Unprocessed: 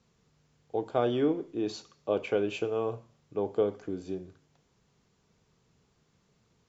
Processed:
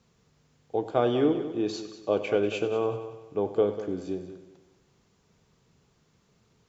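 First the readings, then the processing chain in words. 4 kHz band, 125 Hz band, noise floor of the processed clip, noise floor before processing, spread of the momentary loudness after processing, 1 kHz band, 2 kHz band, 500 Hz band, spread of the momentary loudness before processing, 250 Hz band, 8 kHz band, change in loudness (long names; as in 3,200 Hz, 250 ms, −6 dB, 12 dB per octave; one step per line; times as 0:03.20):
+3.5 dB, +3.5 dB, −67 dBFS, −71 dBFS, 11 LU, +3.5 dB, +3.5 dB, +3.5 dB, 11 LU, +3.5 dB, can't be measured, +3.5 dB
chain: echo machine with several playback heads 96 ms, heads first and second, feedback 40%, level −14 dB
level +3 dB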